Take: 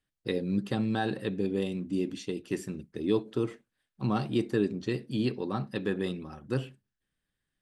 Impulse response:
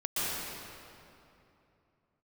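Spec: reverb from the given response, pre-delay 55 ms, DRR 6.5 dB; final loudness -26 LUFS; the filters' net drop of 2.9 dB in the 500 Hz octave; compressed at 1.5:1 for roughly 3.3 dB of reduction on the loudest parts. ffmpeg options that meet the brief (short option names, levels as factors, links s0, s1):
-filter_complex "[0:a]equalizer=f=500:t=o:g=-4,acompressor=threshold=0.0224:ratio=1.5,asplit=2[s0][s1];[1:a]atrim=start_sample=2205,adelay=55[s2];[s1][s2]afir=irnorm=-1:irlink=0,volume=0.168[s3];[s0][s3]amix=inputs=2:normalize=0,volume=2.82"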